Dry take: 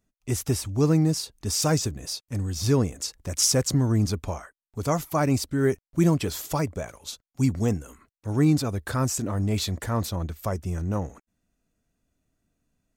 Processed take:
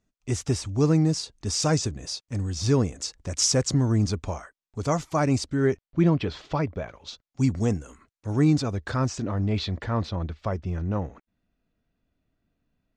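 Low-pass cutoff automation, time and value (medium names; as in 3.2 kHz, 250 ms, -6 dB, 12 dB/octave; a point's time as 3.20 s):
low-pass 24 dB/octave
5.44 s 7.8 kHz
6.01 s 4 kHz
6.87 s 4 kHz
7.56 s 8 kHz
8.30 s 8 kHz
9.59 s 4.4 kHz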